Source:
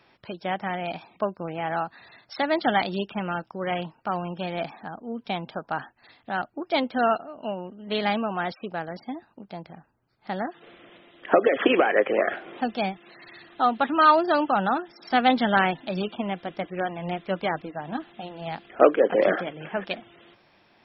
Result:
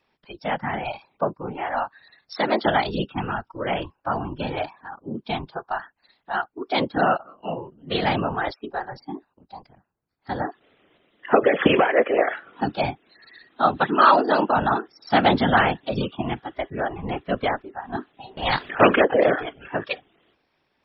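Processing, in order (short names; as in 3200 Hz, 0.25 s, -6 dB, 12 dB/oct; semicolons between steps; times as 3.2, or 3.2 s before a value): whisperiser; spectral noise reduction 13 dB; 18.37–19.05 spectral compressor 2:1; gain +2.5 dB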